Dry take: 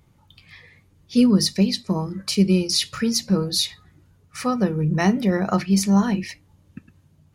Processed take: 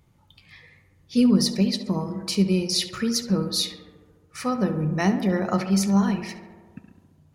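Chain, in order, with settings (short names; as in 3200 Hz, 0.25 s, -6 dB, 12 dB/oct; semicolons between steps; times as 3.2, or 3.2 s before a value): tape echo 69 ms, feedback 82%, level -9 dB, low-pass 2100 Hz; gain -3 dB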